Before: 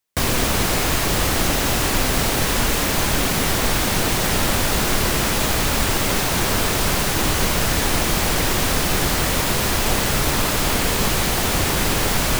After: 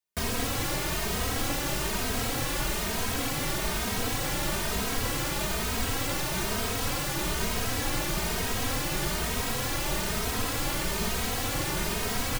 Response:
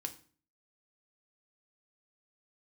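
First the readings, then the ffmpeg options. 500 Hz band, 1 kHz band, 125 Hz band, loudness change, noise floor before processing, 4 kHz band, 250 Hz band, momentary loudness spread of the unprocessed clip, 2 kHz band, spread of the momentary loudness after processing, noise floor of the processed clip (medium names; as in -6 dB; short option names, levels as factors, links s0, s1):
-10.0 dB, -10.0 dB, -10.0 dB, -10.0 dB, -21 dBFS, -10.0 dB, -10.0 dB, 0 LU, -10.0 dB, 0 LU, -31 dBFS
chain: -filter_complex "[0:a]asplit=2[s0][s1];[s1]adelay=2.9,afreqshift=1.1[s2];[s0][s2]amix=inputs=2:normalize=1,volume=0.447"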